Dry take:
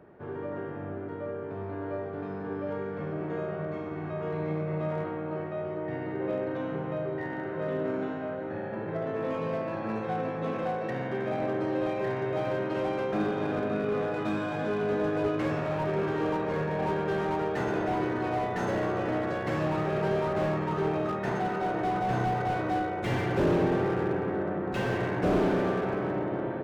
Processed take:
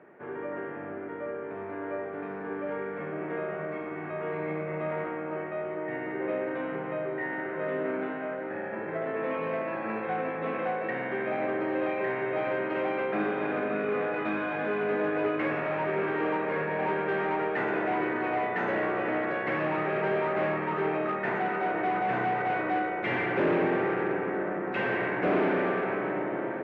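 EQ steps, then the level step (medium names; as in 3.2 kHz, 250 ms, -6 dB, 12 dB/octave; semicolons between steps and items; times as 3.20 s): high-pass 220 Hz 12 dB/octave; resonant low-pass 2.2 kHz, resonance Q 2.4; 0.0 dB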